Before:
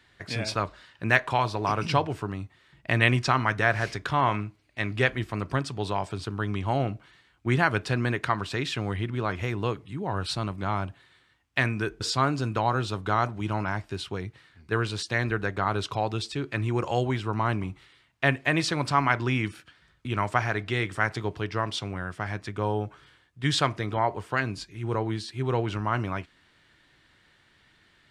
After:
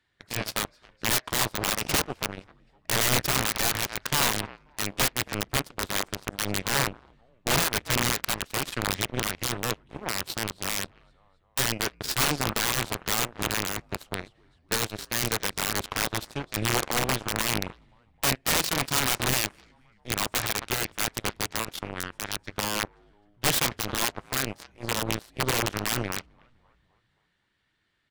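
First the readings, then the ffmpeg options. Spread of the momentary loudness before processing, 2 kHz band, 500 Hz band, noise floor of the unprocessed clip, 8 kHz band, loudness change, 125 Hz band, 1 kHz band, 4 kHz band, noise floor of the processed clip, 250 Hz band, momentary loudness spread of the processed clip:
10 LU, -1.5 dB, -3.5 dB, -63 dBFS, +15.0 dB, +0.5 dB, -6.5 dB, -4.0 dB, +6.5 dB, -68 dBFS, -4.0 dB, 10 LU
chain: -filter_complex "[0:a]asplit=6[a][b][c][d][e][f];[b]adelay=261,afreqshift=-59,volume=-14dB[g];[c]adelay=522,afreqshift=-118,volume=-20.4dB[h];[d]adelay=783,afreqshift=-177,volume=-26.8dB[i];[e]adelay=1044,afreqshift=-236,volume=-33.1dB[j];[f]adelay=1305,afreqshift=-295,volume=-39.5dB[k];[a][g][h][i][j][k]amix=inputs=6:normalize=0,aeval=exprs='(mod(9.44*val(0)+1,2)-1)/9.44':c=same,aeval=exprs='0.112*(cos(1*acos(clip(val(0)/0.112,-1,1)))-cos(1*PI/2))+0.0355*(cos(3*acos(clip(val(0)/0.112,-1,1)))-cos(3*PI/2))+0.00282*(cos(7*acos(clip(val(0)/0.112,-1,1)))-cos(7*PI/2))':c=same,volume=4.5dB"

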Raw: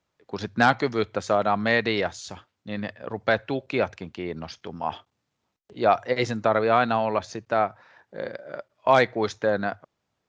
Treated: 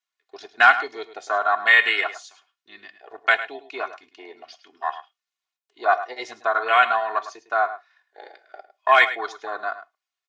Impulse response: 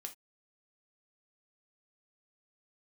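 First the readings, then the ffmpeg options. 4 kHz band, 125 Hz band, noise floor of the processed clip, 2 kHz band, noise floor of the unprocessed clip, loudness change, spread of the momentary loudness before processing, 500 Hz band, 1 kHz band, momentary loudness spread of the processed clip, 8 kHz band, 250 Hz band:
+4.0 dB, under -30 dB, under -85 dBFS, +8.5 dB, -79 dBFS, +4.0 dB, 17 LU, -4.5 dB, +3.5 dB, 17 LU, n/a, -17.0 dB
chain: -filter_complex "[0:a]afwtdn=0.0501,highpass=1.5k,deesser=0.65,aecho=1:1:2.8:0.97,asplit=2[a][b];[b]adelay=105,volume=-13dB,highshelf=f=4k:g=-2.36[c];[a][c]amix=inputs=2:normalize=0,asplit=2[d][e];[1:a]atrim=start_sample=2205[f];[e][f]afir=irnorm=-1:irlink=0,volume=-1.5dB[g];[d][g]amix=inputs=2:normalize=0,volume=5.5dB"

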